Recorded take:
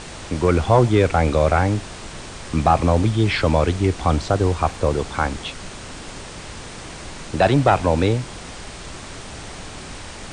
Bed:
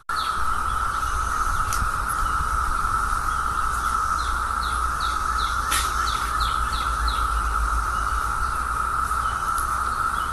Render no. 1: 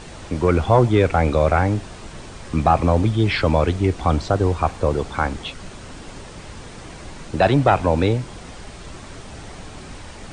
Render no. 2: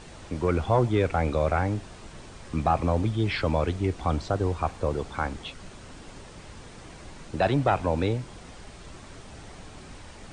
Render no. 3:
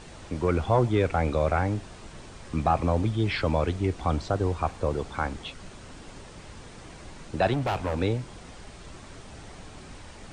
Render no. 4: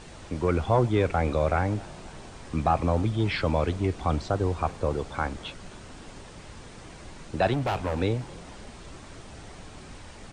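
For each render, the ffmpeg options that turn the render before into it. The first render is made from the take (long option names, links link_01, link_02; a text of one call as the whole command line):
ffmpeg -i in.wav -af "afftdn=noise_reduction=6:noise_floor=-36" out.wav
ffmpeg -i in.wav -af "volume=-7.5dB" out.wav
ffmpeg -i in.wav -filter_complex "[0:a]asettb=1/sr,asplit=3[link_01][link_02][link_03];[link_01]atrim=end=7.534[link_04];[link_02]atrim=start=7.53:end=8.01,asetpts=PTS-STARTPTS,afade=type=in:duration=0.004:curve=qsin,afade=type=out:start_time=0.476:duration=0.004:curve=qsin,asoftclip=type=hard:threshold=-23.5dB[link_05];[link_03]atrim=start=8.006[link_06];[link_04][link_05]acrossfade=duration=0.004:curve1=hsin:curve2=qsin[link_07];[link_07][link_06]acrossfade=duration=0.004:curve1=qsin:curve2=hsin" out.wav
ffmpeg -i in.wav -filter_complex "[0:a]asplit=6[link_01][link_02][link_03][link_04][link_05][link_06];[link_02]adelay=269,afreqshift=56,volume=-23.5dB[link_07];[link_03]adelay=538,afreqshift=112,volume=-27.4dB[link_08];[link_04]adelay=807,afreqshift=168,volume=-31.3dB[link_09];[link_05]adelay=1076,afreqshift=224,volume=-35.1dB[link_10];[link_06]adelay=1345,afreqshift=280,volume=-39dB[link_11];[link_01][link_07][link_08][link_09][link_10][link_11]amix=inputs=6:normalize=0" out.wav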